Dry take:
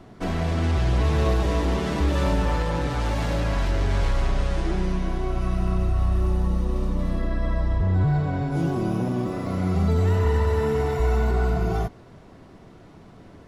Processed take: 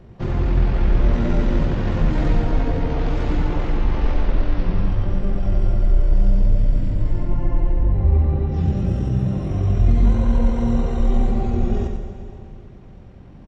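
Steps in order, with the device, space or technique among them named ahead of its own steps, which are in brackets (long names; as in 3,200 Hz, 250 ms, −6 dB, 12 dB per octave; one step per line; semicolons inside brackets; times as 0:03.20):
monster voice (pitch shifter −11 semitones; low-shelf EQ 250 Hz +4 dB; single-tap delay 93 ms −7 dB; convolution reverb RT60 2.4 s, pre-delay 81 ms, DRR 7 dB)
level +1 dB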